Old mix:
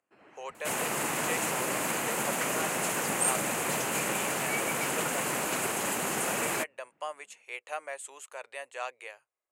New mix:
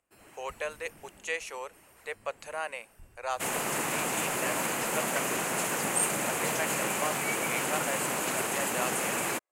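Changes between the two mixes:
speech +3.0 dB
first sound: remove band-pass filter 190–2,400 Hz
second sound: entry +2.75 s

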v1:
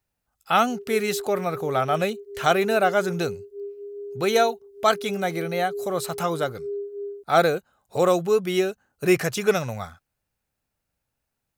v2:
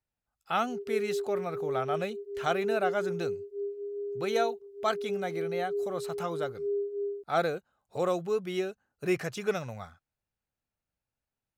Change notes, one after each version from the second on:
speech −9.0 dB
master: add high-shelf EQ 8,200 Hz −10 dB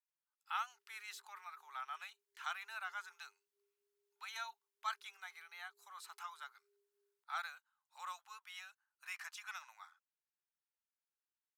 speech −8.0 dB
master: add Chebyshev high-pass filter 910 Hz, order 5

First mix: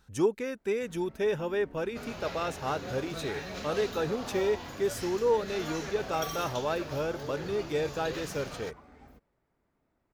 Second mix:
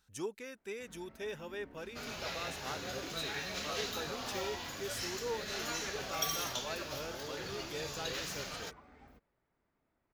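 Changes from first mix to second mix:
speech −9.0 dB
first sound: add parametric band 12,000 Hz −12.5 dB 2.4 octaves
master: add tilt shelving filter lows −5.5 dB, about 1,500 Hz

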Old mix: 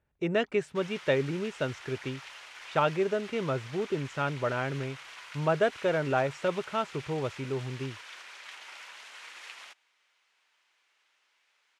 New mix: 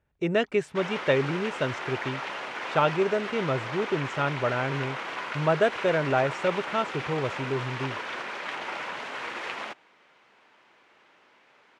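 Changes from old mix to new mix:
speech +3.0 dB
background: remove first difference

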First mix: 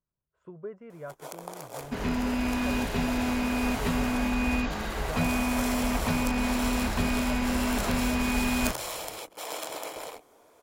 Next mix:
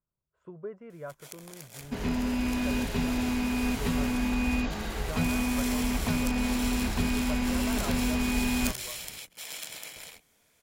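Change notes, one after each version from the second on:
first sound: add flat-topped bell 600 Hz −16 dB 2.5 octaves
second sound: add parametric band 1,300 Hz −4.5 dB 1.6 octaves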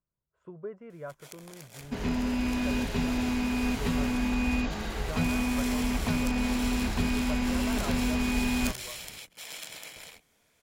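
first sound: add high-shelf EQ 7,100 Hz −5.5 dB

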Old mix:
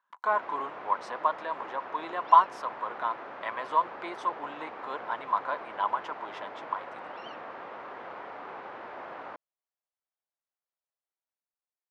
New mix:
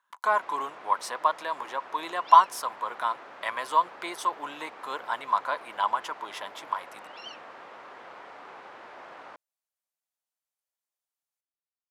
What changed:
first sound −6.5 dB
master: remove head-to-tape spacing loss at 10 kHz 25 dB

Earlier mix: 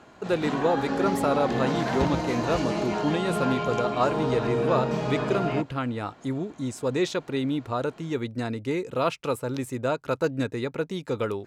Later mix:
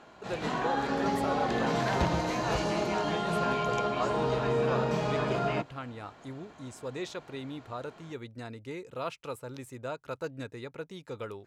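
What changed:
speech −9.5 dB
master: add parametric band 250 Hz −4.5 dB 1.5 octaves

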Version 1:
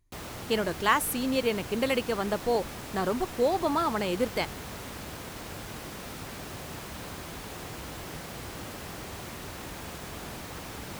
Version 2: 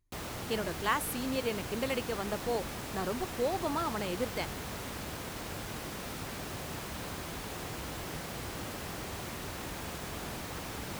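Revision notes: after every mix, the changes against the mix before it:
speech −6.5 dB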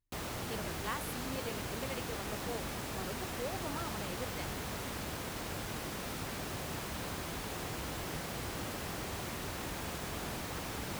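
speech −9.5 dB

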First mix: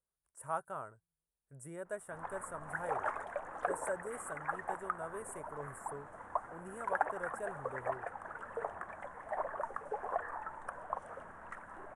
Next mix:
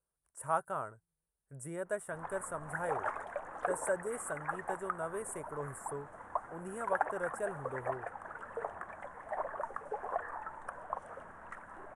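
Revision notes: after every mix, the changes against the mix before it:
speech +5.0 dB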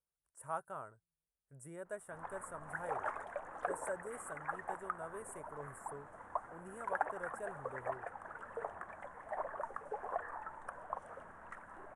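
speech −8.0 dB
background −3.0 dB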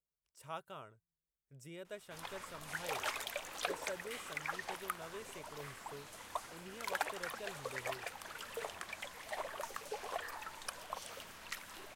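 background: remove head-to-tape spacing loss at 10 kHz 29 dB
master: remove drawn EQ curve 400 Hz 0 dB, 760 Hz +6 dB, 1,100 Hz +5 dB, 1,700 Hz +4 dB, 2,400 Hz −13 dB, 4,500 Hz −24 dB, 9,700 Hz +12 dB, 15,000 Hz −21 dB

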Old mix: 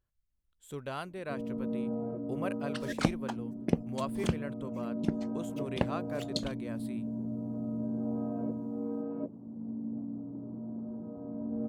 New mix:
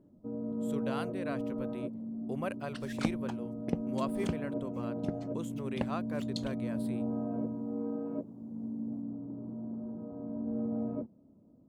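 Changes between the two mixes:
first sound: entry −1.05 s
second sound −5.5 dB

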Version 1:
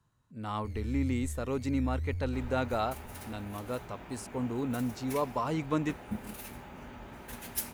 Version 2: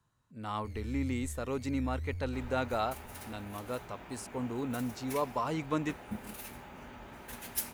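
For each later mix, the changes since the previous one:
master: add low-shelf EQ 400 Hz −4 dB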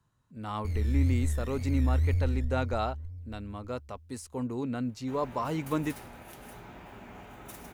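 first sound +9.0 dB
second sound: entry +2.75 s
master: add low-shelf EQ 400 Hz +4 dB

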